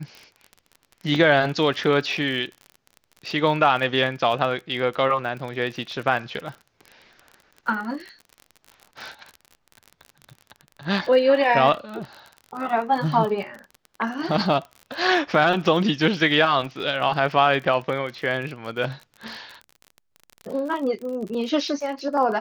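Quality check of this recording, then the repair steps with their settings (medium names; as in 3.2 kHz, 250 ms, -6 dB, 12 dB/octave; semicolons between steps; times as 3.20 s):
crackle 38 per s -31 dBFS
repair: de-click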